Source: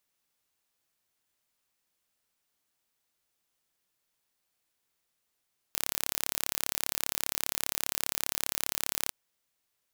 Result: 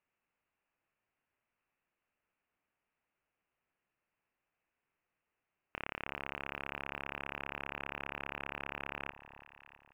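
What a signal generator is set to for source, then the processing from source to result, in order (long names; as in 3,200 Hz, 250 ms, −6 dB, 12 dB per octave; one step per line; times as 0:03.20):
impulse train 35 per second, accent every 0, −3 dBFS 3.36 s
elliptic low-pass filter 2,700 Hz, stop band 40 dB
delay that swaps between a low-pass and a high-pass 328 ms, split 1,000 Hz, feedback 58%, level −11 dB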